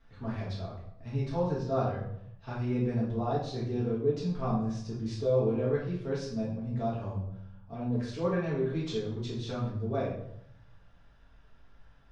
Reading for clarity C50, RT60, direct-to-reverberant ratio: 3.0 dB, 0.75 s, −9.0 dB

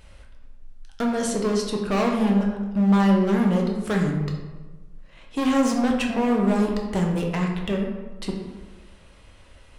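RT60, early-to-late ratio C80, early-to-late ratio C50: 1.3 s, 6.0 dB, 4.0 dB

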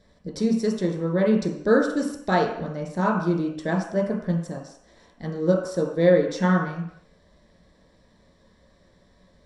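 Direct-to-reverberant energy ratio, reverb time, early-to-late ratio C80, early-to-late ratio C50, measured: −1.0 dB, 0.70 s, 8.5 dB, 5.5 dB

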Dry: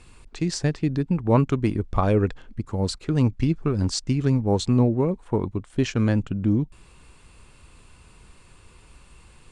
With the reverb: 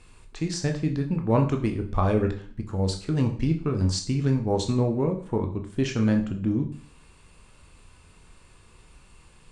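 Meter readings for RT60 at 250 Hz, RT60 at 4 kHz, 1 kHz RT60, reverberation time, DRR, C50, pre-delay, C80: 0.50 s, 0.45 s, 0.50 s, 0.45 s, 4.0 dB, 11.0 dB, 13 ms, 14.5 dB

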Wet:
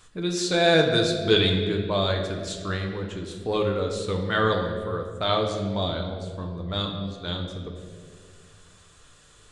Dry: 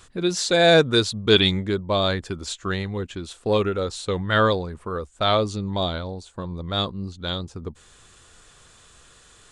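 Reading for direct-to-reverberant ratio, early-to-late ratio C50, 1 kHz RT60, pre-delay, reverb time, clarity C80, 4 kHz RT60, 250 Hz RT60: 1.5 dB, 5.5 dB, 1.6 s, 7 ms, 2.0 s, 7.0 dB, 1.3 s, 2.3 s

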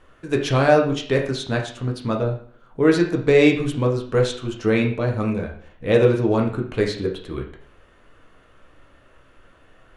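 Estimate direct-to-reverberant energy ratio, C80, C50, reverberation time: 0.5 dB, 11.5 dB, 7.5 dB, 0.55 s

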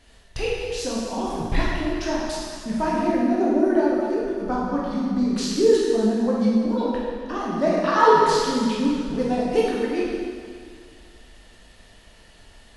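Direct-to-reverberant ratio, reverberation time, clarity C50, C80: −6.0 dB, 2.1 s, −2.0 dB, 0.5 dB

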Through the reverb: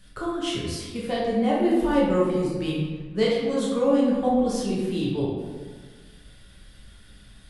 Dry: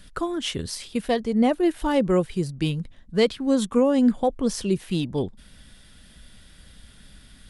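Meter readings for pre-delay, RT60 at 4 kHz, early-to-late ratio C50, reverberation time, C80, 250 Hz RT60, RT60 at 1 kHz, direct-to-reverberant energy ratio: 9 ms, 0.85 s, −0.5 dB, 1.5 s, 2.5 dB, 1.6 s, 1.5 s, −6.0 dB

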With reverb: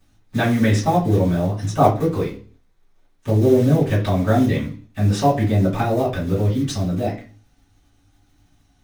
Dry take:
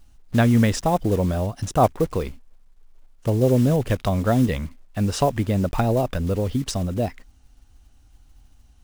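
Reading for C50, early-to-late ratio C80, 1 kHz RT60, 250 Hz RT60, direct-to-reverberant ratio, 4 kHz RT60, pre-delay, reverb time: 8.5 dB, 14.5 dB, 0.40 s, 0.50 s, −11.0 dB, 0.45 s, 3 ms, 0.40 s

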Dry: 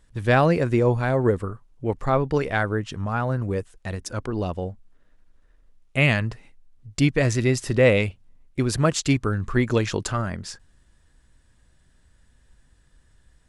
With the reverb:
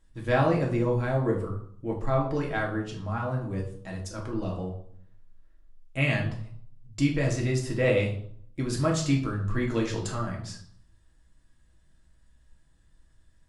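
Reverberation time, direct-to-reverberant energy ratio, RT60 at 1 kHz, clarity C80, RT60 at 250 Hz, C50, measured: 0.60 s, −1.5 dB, 0.60 s, 11.5 dB, 0.75 s, 7.5 dB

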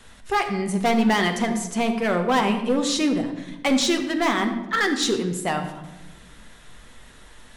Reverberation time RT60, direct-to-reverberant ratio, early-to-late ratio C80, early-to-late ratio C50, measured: 1.1 s, 4.5 dB, 10.0 dB, 8.5 dB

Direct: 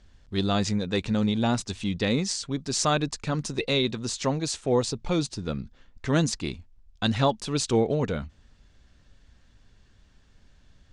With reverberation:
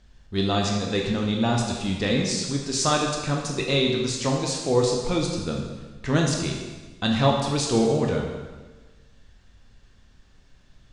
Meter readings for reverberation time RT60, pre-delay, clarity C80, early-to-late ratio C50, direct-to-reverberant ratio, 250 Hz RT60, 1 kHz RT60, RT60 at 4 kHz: 1.3 s, 8 ms, 5.0 dB, 3.0 dB, −0.5 dB, 1.4 s, 1.3 s, 1.2 s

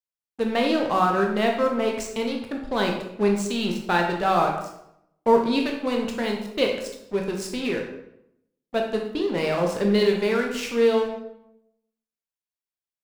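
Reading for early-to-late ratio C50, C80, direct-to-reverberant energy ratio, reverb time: 5.0 dB, 8.0 dB, 1.0 dB, 0.75 s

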